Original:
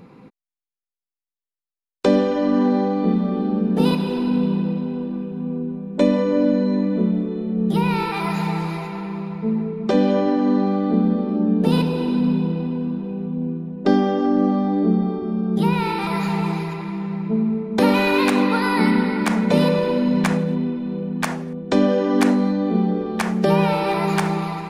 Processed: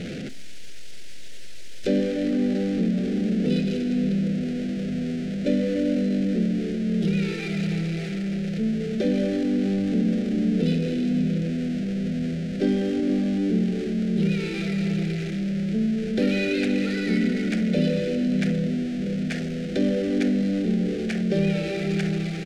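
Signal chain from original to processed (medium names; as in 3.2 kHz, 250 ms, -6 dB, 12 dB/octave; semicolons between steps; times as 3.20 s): jump at every zero crossing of -19 dBFS; Butterworth band-stop 1 kHz, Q 0.87; distance through air 90 m; tempo 1.1×; on a send: reverberation RT60 0.65 s, pre-delay 6 ms, DRR 18 dB; on the sum: trim -7 dB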